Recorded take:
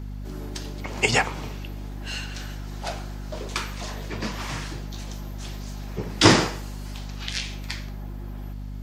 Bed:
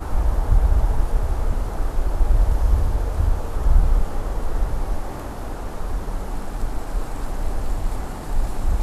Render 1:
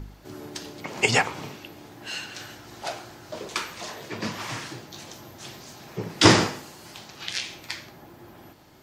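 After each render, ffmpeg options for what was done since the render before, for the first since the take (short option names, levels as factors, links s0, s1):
-af "bandreject=f=50:t=h:w=4,bandreject=f=100:t=h:w=4,bandreject=f=150:t=h:w=4,bandreject=f=200:t=h:w=4,bandreject=f=250:t=h:w=4"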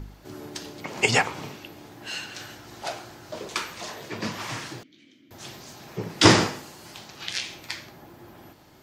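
-filter_complex "[0:a]asettb=1/sr,asplit=3[s0][s1][s2];[s0]atrim=end=4.834[s3];[s1]atrim=start=4.83:end=5.31,asetpts=PTS-STARTPTS,afade=t=in:d=0.004:c=qsin,afade=t=out:st=0.476:d=0.004:c=qsin,asplit=3[s4][s5][s6];[s4]bandpass=f=270:t=q:w=8,volume=1[s7];[s5]bandpass=f=2290:t=q:w=8,volume=0.501[s8];[s6]bandpass=f=3010:t=q:w=8,volume=0.355[s9];[s7][s8][s9]amix=inputs=3:normalize=0[s10];[s2]atrim=start=5.306[s11];[s3][s10]acrossfade=d=0.004:c1=hsin:c2=qsin[s12];[s12][s11]acrossfade=d=0.004:c1=qsin:c2=hsin"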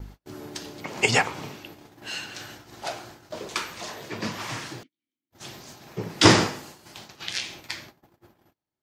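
-af "agate=range=0.0141:threshold=0.00631:ratio=16:detection=peak"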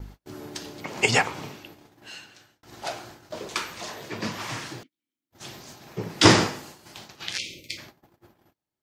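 -filter_complex "[0:a]asplit=3[s0][s1][s2];[s0]afade=t=out:st=7.37:d=0.02[s3];[s1]asuperstop=centerf=1100:order=20:qfactor=0.74,afade=t=in:st=7.37:d=0.02,afade=t=out:st=7.77:d=0.02[s4];[s2]afade=t=in:st=7.77:d=0.02[s5];[s3][s4][s5]amix=inputs=3:normalize=0,asplit=2[s6][s7];[s6]atrim=end=2.63,asetpts=PTS-STARTPTS,afade=t=out:st=1.37:d=1.26[s8];[s7]atrim=start=2.63,asetpts=PTS-STARTPTS,afade=t=in:d=0.004:c=hsin[s9];[s8][s9]concat=n=2:v=0:a=1"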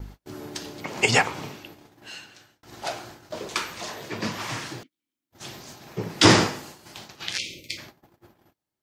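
-af "volume=1.19,alimiter=limit=0.708:level=0:latency=1"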